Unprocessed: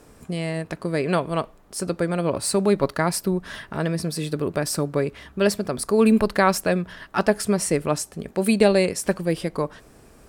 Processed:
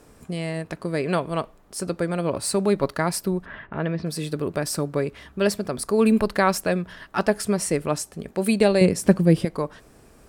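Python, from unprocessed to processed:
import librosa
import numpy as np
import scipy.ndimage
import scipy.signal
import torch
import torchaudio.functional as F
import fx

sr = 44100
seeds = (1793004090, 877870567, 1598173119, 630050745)

y = fx.lowpass(x, sr, hz=fx.line((3.44, 2100.0), (4.05, 3800.0)), slope=24, at=(3.44, 4.05), fade=0.02)
y = fx.peak_eq(y, sr, hz=160.0, db=11.5, octaves=2.6, at=(8.81, 9.45))
y = y * librosa.db_to_amplitude(-1.5)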